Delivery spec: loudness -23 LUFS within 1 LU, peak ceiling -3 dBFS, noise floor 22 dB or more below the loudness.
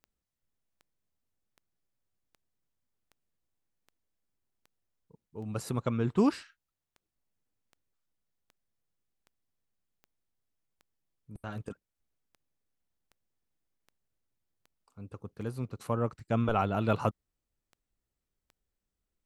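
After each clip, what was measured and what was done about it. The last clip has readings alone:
clicks found 25; loudness -32.0 LUFS; peak level -13.5 dBFS; loudness target -23.0 LUFS
-> de-click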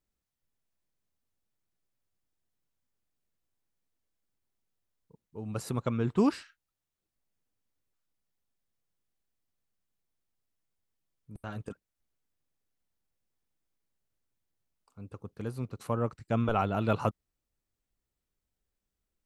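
clicks found 0; loudness -32.0 LUFS; peak level -13.5 dBFS; loudness target -23.0 LUFS
-> trim +9 dB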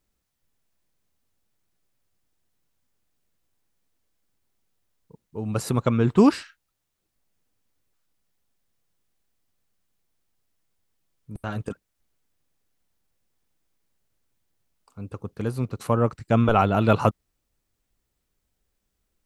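loudness -23.0 LUFS; peak level -4.5 dBFS; noise floor -78 dBFS

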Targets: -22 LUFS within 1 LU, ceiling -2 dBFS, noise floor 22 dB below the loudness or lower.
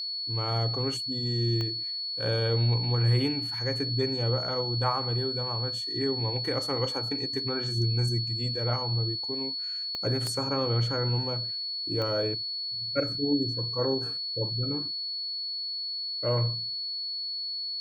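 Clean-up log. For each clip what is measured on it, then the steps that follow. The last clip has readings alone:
clicks found 4; steady tone 4.4 kHz; tone level -31 dBFS; loudness -28.0 LUFS; peak level -14.0 dBFS; loudness target -22.0 LUFS
-> de-click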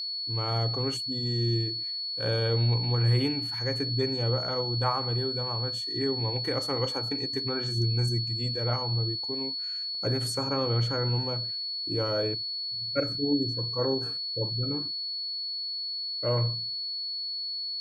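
clicks found 0; steady tone 4.4 kHz; tone level -31 dBFS
-> band-stop 4.4 kHz, Q 30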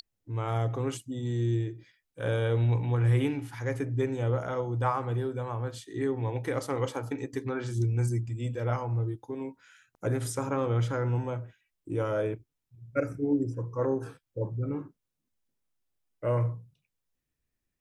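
steady tone not found; loudness -31.0 LUFS; peak level -15.0 dBFS; loudness target -22.0 LUFS
-> trim +9 dB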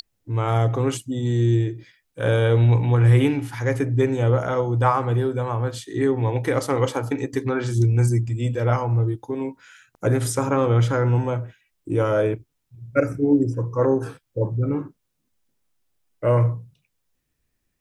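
loudness -22.0 LUFS; peak level -6.0 dBFS; noise floor -75 dBFS

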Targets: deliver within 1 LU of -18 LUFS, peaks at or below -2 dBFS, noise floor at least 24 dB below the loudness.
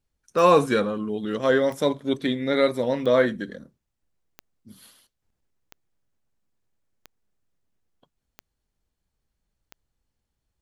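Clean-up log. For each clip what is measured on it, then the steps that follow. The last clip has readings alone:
clicks found 8; loudness -22.5 LUFS; peak level -5.5 dBFS; loudness target -18.0 LUFS
-> de-click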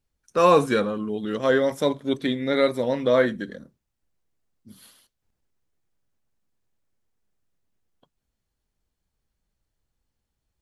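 clicks found 0; loudness -22.5 LUFS; peak level -5.5 dBFS; loudness target -18.0 LUFS
-> trim +4.5 dB; peak limiter -2 dBFS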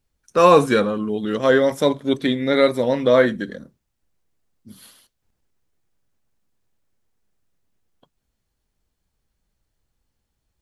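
loudness -18.0 LUFS; peak level -2.0 dBFS; noise floor -76 dBFS

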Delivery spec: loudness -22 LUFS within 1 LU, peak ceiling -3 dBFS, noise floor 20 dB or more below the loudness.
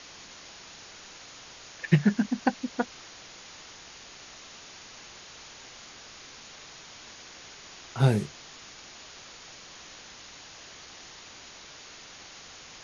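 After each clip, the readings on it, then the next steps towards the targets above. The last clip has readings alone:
noise floor -48 dBFS; noise floor target -51 dBFS; loudness -31.0 LUFS; peak level -6.5 dBFS; loudness target -22.0 LUFS
-> noise reduction 6 dB, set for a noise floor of -48 dBFS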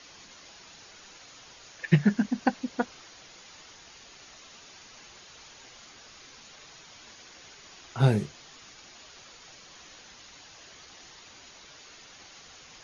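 noise floor -51 dBFS; loudness -27.5 LUFS; peak level -6.5 dBFS; loudness target -22.0 LUFS
-> trim +5.5 dB; peak limiter -3 dBFS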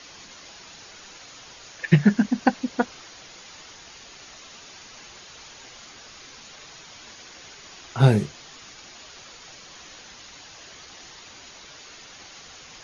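loudness -22.5 LUFS; peak level -3.0 dBFS; noise floor -46 dBFS

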